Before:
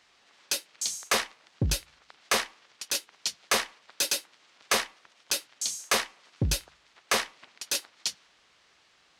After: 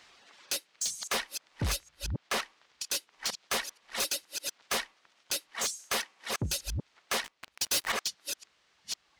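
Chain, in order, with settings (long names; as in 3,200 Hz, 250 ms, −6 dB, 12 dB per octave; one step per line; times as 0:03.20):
delay that plays each chunk backwards 472 ms, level −8 dB
0:05.51–0:06.58: high-pass filter 100 Hz 12 dB per octave
reverb reduction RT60 1.9 s
0:01.76–0:02.42: high-shelf EQ 5,500 Hz −7.5 dB
in parallel at −1 dB: downward compressor, threshold −38 dBFS, peak gain reduction 17 dB
0:07.24–0:07.92: on the sum: leveller curve on the samples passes 5
soft clipping −26 dBFS, distortion −7 dB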